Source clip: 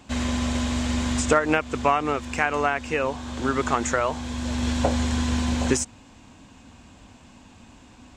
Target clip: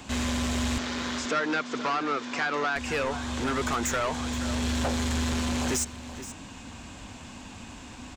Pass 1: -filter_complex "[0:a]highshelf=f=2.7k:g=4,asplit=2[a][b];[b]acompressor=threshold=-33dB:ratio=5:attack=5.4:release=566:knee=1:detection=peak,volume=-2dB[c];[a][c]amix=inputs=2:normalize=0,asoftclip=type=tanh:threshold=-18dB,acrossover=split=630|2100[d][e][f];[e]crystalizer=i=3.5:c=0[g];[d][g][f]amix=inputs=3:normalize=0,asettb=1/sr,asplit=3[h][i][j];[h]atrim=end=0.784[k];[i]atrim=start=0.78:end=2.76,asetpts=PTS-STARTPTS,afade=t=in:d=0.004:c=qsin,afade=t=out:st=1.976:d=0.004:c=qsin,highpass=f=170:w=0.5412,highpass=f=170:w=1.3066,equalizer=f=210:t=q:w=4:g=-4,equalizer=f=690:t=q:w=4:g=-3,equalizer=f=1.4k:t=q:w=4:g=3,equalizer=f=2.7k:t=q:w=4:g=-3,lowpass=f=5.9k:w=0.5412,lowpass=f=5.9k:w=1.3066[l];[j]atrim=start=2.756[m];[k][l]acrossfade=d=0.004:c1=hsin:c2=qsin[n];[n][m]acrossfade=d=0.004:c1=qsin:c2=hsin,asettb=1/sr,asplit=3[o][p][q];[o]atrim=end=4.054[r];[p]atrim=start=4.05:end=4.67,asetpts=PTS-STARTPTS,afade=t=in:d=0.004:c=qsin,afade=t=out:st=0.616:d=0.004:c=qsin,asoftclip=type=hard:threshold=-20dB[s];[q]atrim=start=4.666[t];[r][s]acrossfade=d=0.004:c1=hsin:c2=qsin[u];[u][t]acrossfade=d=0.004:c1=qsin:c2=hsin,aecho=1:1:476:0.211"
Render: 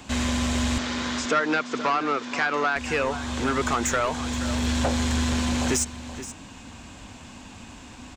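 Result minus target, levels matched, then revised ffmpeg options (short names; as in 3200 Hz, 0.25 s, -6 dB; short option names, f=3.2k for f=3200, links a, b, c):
compressor: peak gain reduction -6 dB; soft clip: distortion -4 dB
-filter_complex "[0:a]highshelf=f=2.7k:g=4,asplit=2[a][b];[b]acompressor=threshold=-40.5dB:ratio=5:attack=5.4:release=566:knee=1:detection=peak,volume=-2dB[c];[a][c]amix=inputs=2:normalize=0,asoftclip=type=tanh:threshold=-24.5dB,acrossover=split=630|2100[d][e][f];[e]crystalizer=i=3.5:c=0[g];[d][g][f]amix=inputs=3:normalize=0,asettb=1/sr,asplit=3[h][i][j];[h]atrim=end=0.784[k];[i]atrim=start=0.78:end=2.76,asetpts=PTS-STARTPTS,afade=t=in:d=0.004:c=qsin,afade=t=out:st=1.976:d=0.004:c=qsin,highpass=f=170:w=0.5412,highpass=f=170:w=1.3066,equalizer=f=210:t=q:w=4:g=-4,equalizer=f=690:t=q:w=4:g=-3,equalizer=f=1.4k:t=q:w=4:g=3,equalizer=f=2.7k:t=q:w=4:g=-3,lowpass=f=5.9k:w=0.5412,lowpass=f=5.9k:w=1.3066[l];[j]atrim=start=2.756[m];[k][l]acrossfade=d=0.004:c1=hsin:c2=qsin[n];[n][m]acrossfade=d=0.004:c1=qsin:c2=hsin,asettb=1/sr,asplit=3[o][p][q];[o]atrim=end=4.054[r];[p]atrim=start=4.05:end=4.67,asetpts=PTS-STARTPTS,afade=t=in:d=0.004:c=qsin,afade=t=out:st=0.616:d=0.004:c=qsin,asoftclip=type=hard:threshold=-20dB[s];[q]atrim=start=4.666[t];[r][s]acrossfade=d=0.004:c1=hsin:c2=qsin[u];[u][t]acrossfade=d=0.004:c1=qsin:c2=hsin,aecho=1:1:476:0.211"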